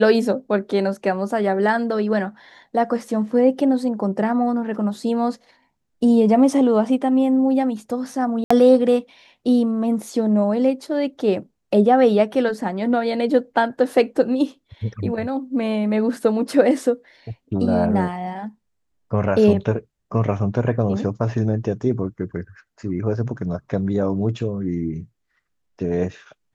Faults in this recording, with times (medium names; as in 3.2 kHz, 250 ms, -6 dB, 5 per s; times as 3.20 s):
8.44–8.51 s: dropout 65 ms